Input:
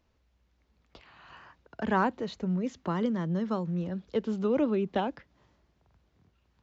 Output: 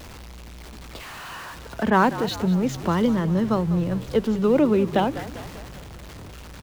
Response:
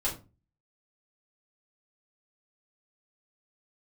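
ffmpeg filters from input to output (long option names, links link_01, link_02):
-filter_complex "[0:a]aeval=exprs='val(0)+0.5*0.0075*sgn(val(0))':channel_layout=same,asplit=2[link_01][link_02];[link_02]asplit=6[link_03][link_04][link_05][link_06][link_07][link_08];[link_03]adelay=197,afreqshift=-48,volume=-14dB[link_09];[link_04]adelay=394,afreqshift=-96,volume=-18.7dB[link_10];[link_05]adelay=591,afreqshift=-144,volume=-23.5dB[link_11];[link_06]adelay=788,afreqshift=-192,volume=-28.2dB[link_12];[link_07]adelay=985,afreqshift=-240,volume=-32.9dB[link_13];[link_08]adelay=1182,afreqshift=-288,volume=-37.7dB[link_14];[link_09][link_10][link_11][link_12][link_13][link_14]amix=inputs=6:normalize=0[link_15];[link_01][link_15]amix=inputs=2:normalize=0,asettb=1/sr,asplit=3[link_16][link_17][link_18];[link_16]atrim=end=1.904[link_19];[link_17]atrim=start=1.9:end=3.16,asetpts=PTS-STARTPTS,afade=type=in:duration=0.004:curve=qsin,afade=type=out:start_time=1.256:duration=0.004:curve=qsin,adynamicequalizer=threshold=0.0126:dfrequency=2700:dqfactor=0.7:tfrequency=2700:tqfactor=0.7:attack=5:release=100:ratio=0.375:range=2:mode=boostabove:tftype=highshelf[link_20];[link_18]atrim=start=3.156[link_21];[link_19][link_20]acrossfade=duration=0.004:curve1=hsin:curve2=qsin[link_22];[link_22][link_21]acrossfade=duration=0.004:curve1=qsin:curve2=hsin,volume=7.5dB"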